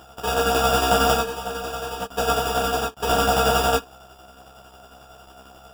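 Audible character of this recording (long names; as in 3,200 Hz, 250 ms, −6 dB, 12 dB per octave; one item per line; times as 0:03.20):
a buzz of ramps at a fixed pitch in blocks of 32 samples
tremolo saw down 11 Hz, depth 55%
aliases and images of a low sample rate 2,100 Hz, jitter 0%
a shimmering, thickened sound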